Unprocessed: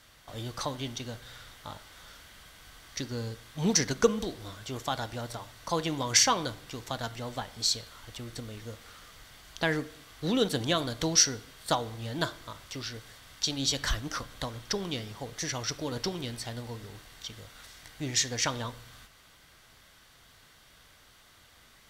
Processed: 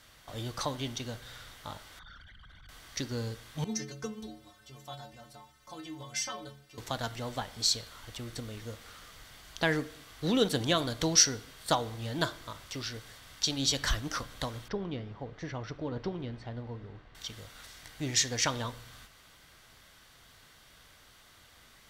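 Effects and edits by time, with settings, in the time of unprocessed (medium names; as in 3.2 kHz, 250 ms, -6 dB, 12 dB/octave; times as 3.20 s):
1.99–2.69 s: resonances exaggerated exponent 3
3.64–6.78 s: inharmonic resonator 65 Hz, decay 0.76 s, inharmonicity 0.03
14.68–17.15 s: tape spacing loss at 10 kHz 38 dB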